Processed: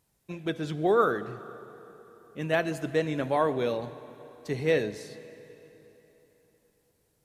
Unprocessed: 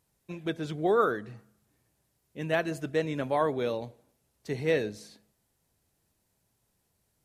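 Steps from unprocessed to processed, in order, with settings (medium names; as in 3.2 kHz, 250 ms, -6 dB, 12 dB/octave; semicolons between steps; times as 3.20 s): plate-style reverb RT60 3.7 s, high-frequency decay 0.85×, DRR 13.5 dB; trim +1.5 dB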